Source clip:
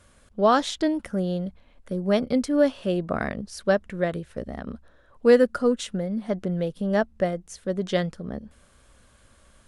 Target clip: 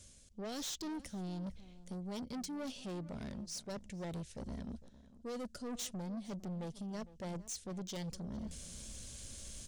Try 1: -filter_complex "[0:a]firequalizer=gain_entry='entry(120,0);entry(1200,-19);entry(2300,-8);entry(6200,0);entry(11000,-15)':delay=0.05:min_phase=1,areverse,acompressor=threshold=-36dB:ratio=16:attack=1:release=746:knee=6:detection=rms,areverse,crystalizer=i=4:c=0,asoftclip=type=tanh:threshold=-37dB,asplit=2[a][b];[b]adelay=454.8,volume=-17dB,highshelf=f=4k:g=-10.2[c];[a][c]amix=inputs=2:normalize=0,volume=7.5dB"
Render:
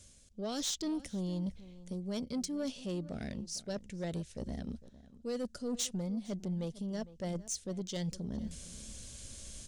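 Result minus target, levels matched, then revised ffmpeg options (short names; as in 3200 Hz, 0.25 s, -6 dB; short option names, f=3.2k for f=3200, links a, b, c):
soft clip: distortion -8 dB
-filter_complex "[0:a]firequalizer=gain_entry='entry(120,0);entry(1200,-19);entry(2300,-8);entry(6200,0);entry(11000,-15)':delay=0.05:min_phase=1,areverse,acompressor=threshold=-36dB:ratio=16:attack=1:release=746:knee=6:detection=rms,areverse,crystalizer=i=4:c=0,asoftclip=type=tanh:threshold=-46.5dB,asplit=2[a][b];[b]adelay=454.8,volume=-17dB,highshelf=f=4k:g=-10.2[c];[a][c]amix=inputs=2:normalize=0,volume=7.5dB"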